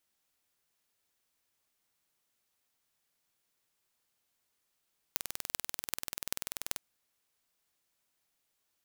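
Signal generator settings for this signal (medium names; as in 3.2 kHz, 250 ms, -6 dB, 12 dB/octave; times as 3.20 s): pulse train 20.6 per s, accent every 8, -3 dBFS 1.61 s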